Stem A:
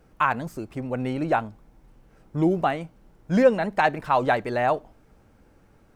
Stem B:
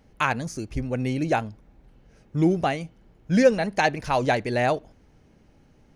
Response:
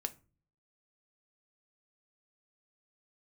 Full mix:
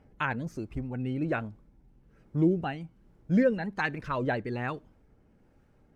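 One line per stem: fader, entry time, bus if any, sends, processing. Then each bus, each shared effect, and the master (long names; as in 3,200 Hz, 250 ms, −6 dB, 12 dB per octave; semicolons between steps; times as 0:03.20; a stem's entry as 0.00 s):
−8.0 dB, 0.00 s, no send, rotating-speaker cabinet horn 1.2 Hz
−1.5 dB, 0.00 s, no send, gate on every frequency bin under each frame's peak −30 dB strong; high-shelf EQ 4,900 Hz −11.5 dB; automatic ducking −7 dB, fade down 0.40 s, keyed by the first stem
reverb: not used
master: high-shelf EQ 6,500 Hz −4.5 dB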